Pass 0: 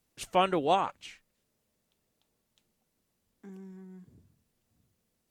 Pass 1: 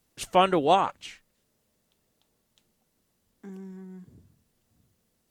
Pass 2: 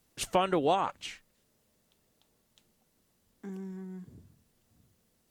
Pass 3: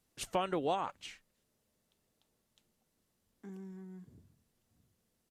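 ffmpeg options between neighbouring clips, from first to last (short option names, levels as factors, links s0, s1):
-af "equalizer=f=2400:w=6.4:g=-2.5,volume=1.78"
-af "acompressor=threshold=0.0631:ratio=6,volume=1.12"
-af "aresample=32000,aresample=44100,volume=0.473"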